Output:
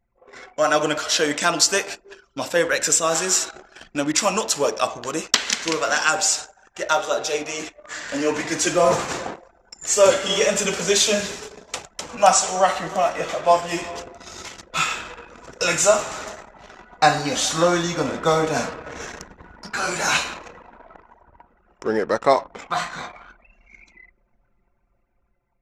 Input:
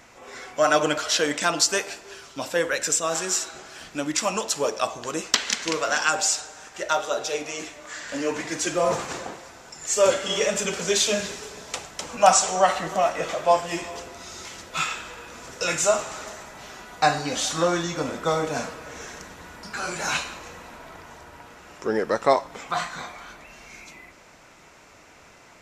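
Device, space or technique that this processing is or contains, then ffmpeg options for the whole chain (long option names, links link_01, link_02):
voice memo with heavy noise removal: -filter_complex "[0:a]asettb=1/sr,asplit=3[link_01][link_02][link_03];[link_01]atrim=end=19.594[link_04];[link_02]atrim=start=19.59:end=21.28,asetpts=PTS-STARTPTS,afade=type=in:duration=0.004:curve=qsin,afade=type=out:start_time=1.686:duration=0.004:curve=qsin,lowshelf=frequency=140:gain=-4.5[link_05];[link_03]atrim=start=21.276[link_06];[link_04][link_05]acrossfade=duration=0.004:curve1=hsin:curve2=qsin[link_07];[link_07][link_06]acrossfade=duration=0.004:curve1=qsin:curve2=hsin,anlmdn=1,dynaudnorm=framelen=430:gausssize=5:maxgain=6dB"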